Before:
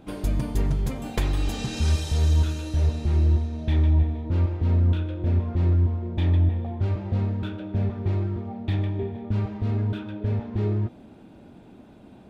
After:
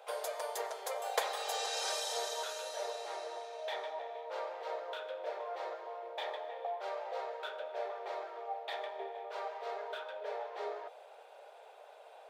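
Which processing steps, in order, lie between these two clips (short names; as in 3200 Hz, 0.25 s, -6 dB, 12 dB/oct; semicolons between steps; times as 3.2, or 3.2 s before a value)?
dynamic EQ 2600 Hz, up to -7 dB, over -57 dBFS, Q 3.1; steep high-pass 460 Hz 72 dB/oct; bell 720 Hz +4 dB 0.73 oct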